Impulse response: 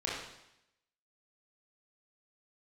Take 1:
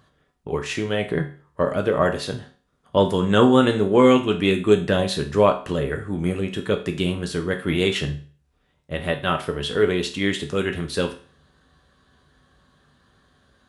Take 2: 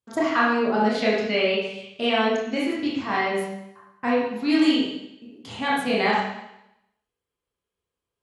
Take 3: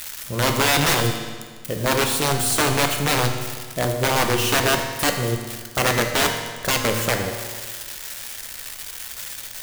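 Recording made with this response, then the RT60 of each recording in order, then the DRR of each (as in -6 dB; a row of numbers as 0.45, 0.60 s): 2; 0.40, 0.80, 1.6 s; 4.0, -6.5, 3.5 dB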